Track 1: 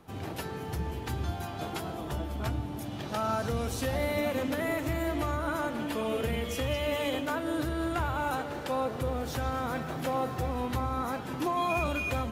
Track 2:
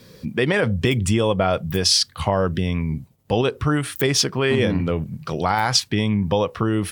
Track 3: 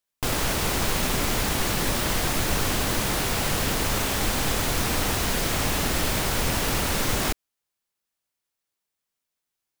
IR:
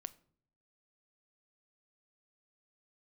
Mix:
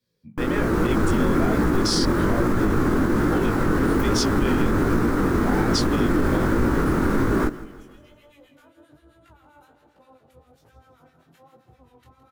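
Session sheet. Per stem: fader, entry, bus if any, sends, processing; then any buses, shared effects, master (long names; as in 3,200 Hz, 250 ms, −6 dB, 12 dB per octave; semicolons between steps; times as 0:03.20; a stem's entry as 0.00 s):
−15.5 dB, 1.30 s, no send, echo send −11.5 dB, two-band tremolo in antiphase 7.6 Hz, depth 100%, crossover 1,200 Hz
−7.0 dB, 0.00 s, no send, no echo send, multiband upward and downward expander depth 70%
+2.0 dB, 0.15 s, no send, echo send −18 dB, drawn EQ curve 120 Hz 0 dB, 330 Hz +10 dB, 690 Hz −7 dB, 1,400 Hz +2 dB, 2,800 Hz −19 dB; automatic gain control gain up to 6 dB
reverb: not used
echo: repeating echo 164 ms, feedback 49%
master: chorus effect 1.2 Hz, delay 16.5 ms, depth 7.4 ms; brickwall limiter −11 dBFS, peak gain reduction 5.5 dB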